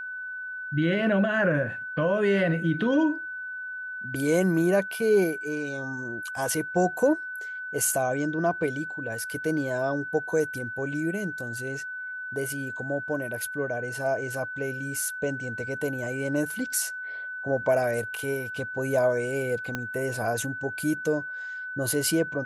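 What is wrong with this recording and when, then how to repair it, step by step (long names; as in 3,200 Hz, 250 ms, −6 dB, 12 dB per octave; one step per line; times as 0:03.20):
whistle 1,500 Hz −33 dBFS
0:19.75: click −15 dBFS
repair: click removal
notch filter 1,500 Hz, Q 30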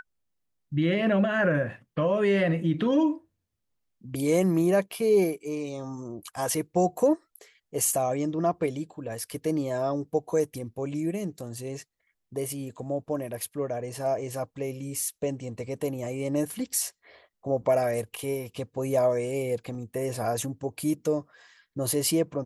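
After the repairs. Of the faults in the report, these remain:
0:19.75: click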